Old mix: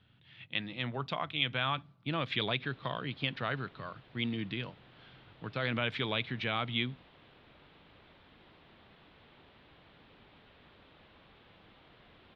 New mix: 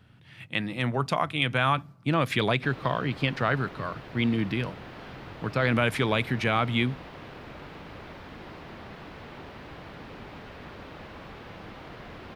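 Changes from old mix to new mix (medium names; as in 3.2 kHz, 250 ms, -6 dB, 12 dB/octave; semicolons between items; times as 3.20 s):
background +7.5 dB; master: remove four-pole ladder low-pass 4.1 kHz, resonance 55%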